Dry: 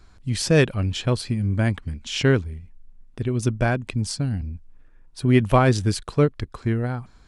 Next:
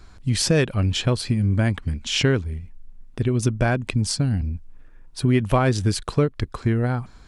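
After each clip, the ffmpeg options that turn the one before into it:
-af "acompressor=threshold=-22dB:ratio=3,volume=5dB"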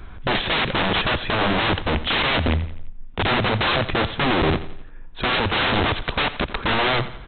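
-af "aresample=8000,aeval=exprs='(mod(15.8*val(0)+1,2)-1)/15.8':c=same,aresample=44100,aecho=1:1:86|172|258|344:0.188|0.0848|0.0381|0.0172,volume=8.5dB"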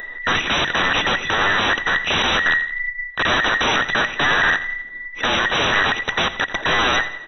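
-af "afftfilt=real='real(if(between(b,1,1012),(2*floor((b-1)/92)+1)*92-b,b),0)':imag='imag(if(between(b,1,1012),(2*floor((b-1)/92)+1)*92-b,b),0)*if(between(b,1,1012),-1,1)':win_size=2048:overlap=0.75,acompressor=mode=upward:threshold=-33dB:ratio=2.5,bandreject=f=60:t=h:w=6,bandreject=f=120:t=h:w=6,volume=2dB"

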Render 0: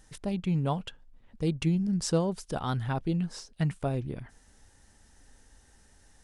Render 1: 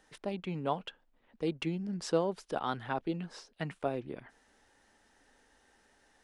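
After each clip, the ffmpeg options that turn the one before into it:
-filter_complex "[0:a]acrossover=split=250 4100:gain=0.126 1 0.251[a][b][c];[a][b][c]amix=inputs=3:normalize=0"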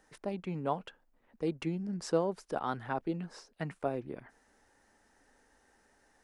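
-af "equalizer=f=3.3k:t=o:w=0.85:g=-7.5"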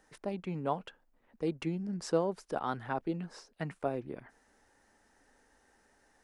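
-af anull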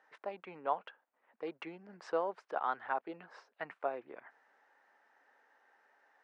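-af "highpass=730,lowpass=2.1k,volume=3dB"

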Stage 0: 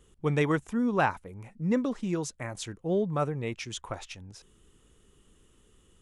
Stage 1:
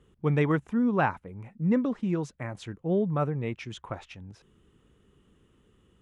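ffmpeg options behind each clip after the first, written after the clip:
-af "highpass=f=170:p=1,bass=f=250:g=8,treble=f=4k:g=-14"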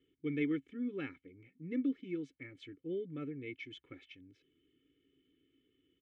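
-filter_complex "[0:a]asplit=3[a][b][c];[a]bandpass=f=270:t=q:w=8,volume=0dB[d];[b]bandpass=f=2.29k:t=q:w=8,volume=-6dB[e];[c]bandpass=f=3.01k:t=q:w=8,volume=-9dB[f];[d][e][f]amix=inputs=3:normalize=0,aecho=1:1:2.3:0.88,volume=1.5dB"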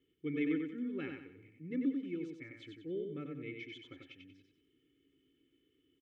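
-af "aecho=1:1:93|186|279|372|465:0.596|0.214|0.0772|0.0278|0.01,volume=-1.5dB"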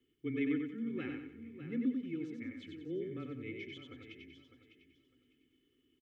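-af "aecho=1:1:603|1206|1809:0.266|0.0585|0.0129,afreqshift=-17"

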